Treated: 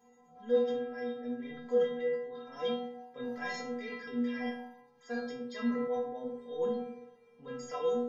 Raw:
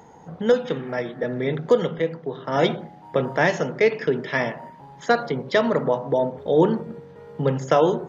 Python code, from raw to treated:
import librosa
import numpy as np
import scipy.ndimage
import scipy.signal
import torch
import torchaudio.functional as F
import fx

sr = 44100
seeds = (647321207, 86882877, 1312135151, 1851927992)

y = fx.transient(x, sr, attack_db=-7, sustain_db=7)
y = fx.stiff_resonator(y, sr, f0_hz=240.0, decay_s=0.83, stiffness=0.008)
y = y * librosa.db_to_amplitude(3.5)